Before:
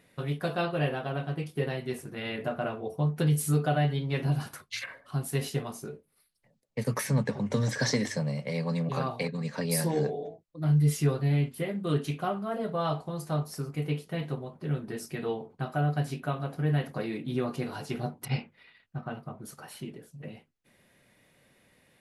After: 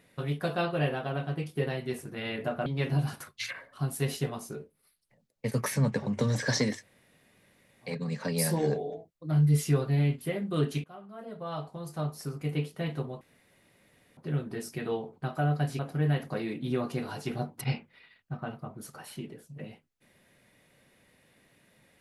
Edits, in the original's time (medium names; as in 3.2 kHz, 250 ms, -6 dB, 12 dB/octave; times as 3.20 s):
2.66–3.99 s: delete
8.09–9.22 s: room tone, crossfade 0.16 s
12.17–13.90 s: fade in, from -21.5 dB
14.54 s: insert room tone 0.96 s
16.16–16.43 s: delete